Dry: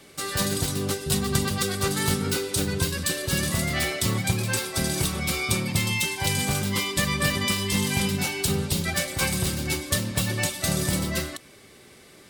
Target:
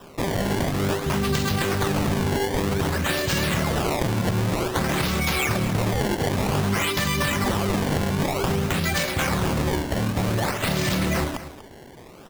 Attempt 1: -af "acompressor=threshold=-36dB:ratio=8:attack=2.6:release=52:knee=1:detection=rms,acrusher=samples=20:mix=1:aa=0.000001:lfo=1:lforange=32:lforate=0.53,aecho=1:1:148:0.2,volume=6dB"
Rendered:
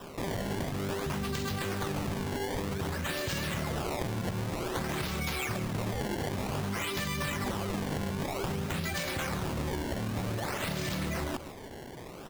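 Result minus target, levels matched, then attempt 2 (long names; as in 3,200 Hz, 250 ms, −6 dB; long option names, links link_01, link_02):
downward compressor: peak gain reduction +10 dB; echo 92 ms early
-af "acompressor=threshold=-24.5dB:ratio=8:attack=2.6:release=52:knee=1:detection=rms,acrusher=samples=20:mix=1:aa=0.000001:lfo=1:lforange=32:lforate=0.53,aecho=1:1:240:0.2,volume=6dB"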